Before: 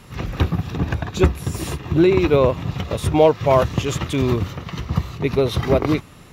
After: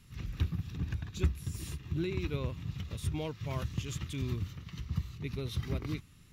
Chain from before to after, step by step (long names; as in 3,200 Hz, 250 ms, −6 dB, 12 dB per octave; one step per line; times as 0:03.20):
guitar amp tone stack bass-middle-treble 6-0-2
level +1.5 dB